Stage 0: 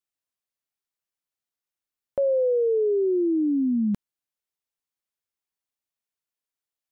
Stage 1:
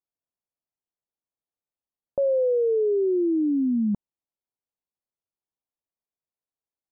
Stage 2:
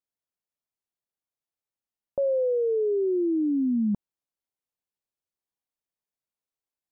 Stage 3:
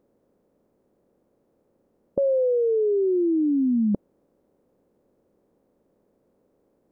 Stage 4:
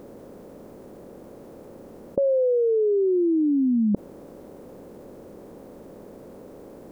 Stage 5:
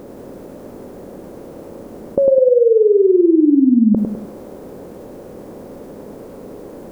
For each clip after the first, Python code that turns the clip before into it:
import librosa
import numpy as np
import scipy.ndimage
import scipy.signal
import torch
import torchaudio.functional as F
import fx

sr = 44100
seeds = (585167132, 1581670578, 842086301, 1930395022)

y1 = scipy.signal.sosfilt(scipy.signal.butter(4, 1000.0, 'lowpass', fs=sr, output='sos'), x)
y2 = fx.rider(y1, sr, range_db=10, speed_s=0.5)
y2 = y2 * librosa.db_to_amplitude(-1.5)
y3 = fx.bin_compress(y2, sr, power=0.6)
y3 = y3 * librosa.db_to_amplitude(2.0)
y4 = fx.env_flatten(y3, sr, amount_pct=50)
y5 = fx.echo_feedback(y4, sr, ms=102, feedback_pct=42, wet_db=-4.5)
y5 = y5 * librosa.db_to_amplitude(7.5)